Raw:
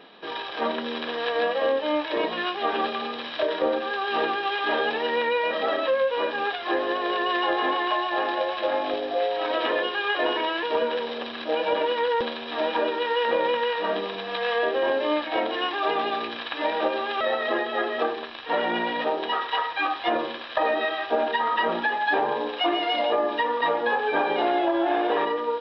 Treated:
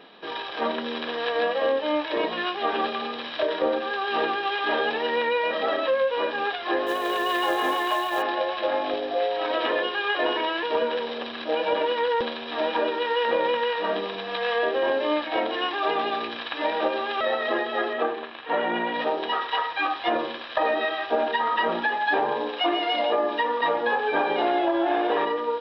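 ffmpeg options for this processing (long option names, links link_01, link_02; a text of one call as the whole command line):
ffmpeg -i in.wav -filter_complex "[0:a]asplit=3[link_01][link_02][link_03];[link_01]afade=type=out:start_time=6.86:duration=0.02[link_04];[link_02]acrusher=bits=5:mode=log:mix=0:aa=0.000001,afade=type=in:start_time=6.86:duration=0.02,afade=type=out:start_time=8.21:duration=0.02[link_05];[link_03]afade=type=in:start_time=8.21:duration=0.02[link_06];[link_04][link_05][link_06]amix=inputs=3:normalize=0,asettb=1/sr,asplit=3[link_07][link_08][link_09];[link_07]atrim=end=17.934[link_10];[link_08]atrim=start=17.93:end=18.94,asetpts=PTS-STARTPTS,afade=type=in:duration=0.004:curve=qsin,afade=type=out:start_time=1.006:duration=0.004:curve=qsin,highpass=110,lowpass=3000[link_11];[link_09]atrim=start=18.936[link_12];[link_10][link_11]acrossfade=duration=0.004:curve1=hsin:curve2=qsin[link_13];[link_13][link_12]acrossfade=duration=0.004:curve1=qsin:curve2=hsin,asettb=1/sr,asplit=3[link_14][link_15][link_16];[link_14]atrim=end=22.434[link_17];[link_15]atrim=start=22.43:end=23.77,asetpts=PTS-STARTPTS,afade=type=in:duration=0.004:curve=qsin,afade=type=out:start_time=1.336:duration=0.004:curve=qsin,highpass=120[link_18];[link_16]atrim=start=23.766[link_19];[link_17][link_18]acrossfade=duration=0.004:curve1=hsin:curve2=qsin[link_20];[link_20][link_19]acrossfade=duration=0.004:curve1=qsin:curve2=hsin" out.wav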